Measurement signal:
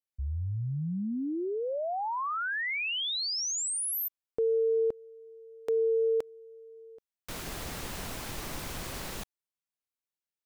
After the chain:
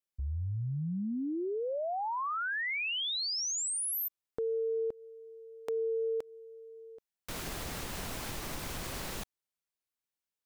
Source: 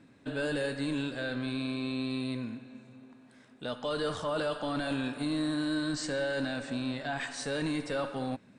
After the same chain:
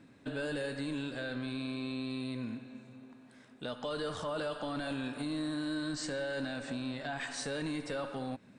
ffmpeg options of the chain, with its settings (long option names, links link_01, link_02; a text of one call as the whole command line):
ffmpeg -i in.wav -af "acompressor=threshold=-32dB:ratio=3:attack=2:release=484:knee=1:detection=peak" out.wav